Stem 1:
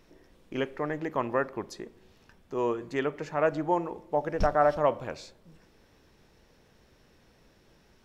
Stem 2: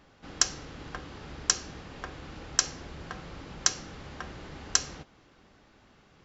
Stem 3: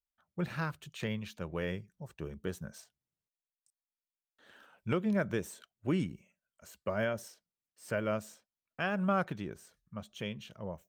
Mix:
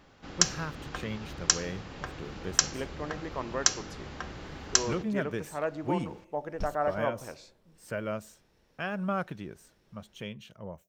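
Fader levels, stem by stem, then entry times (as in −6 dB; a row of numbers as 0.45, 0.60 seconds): −6.5, +1.0, −1.0 decibels; 2.20, 0.00, 0.00 seconds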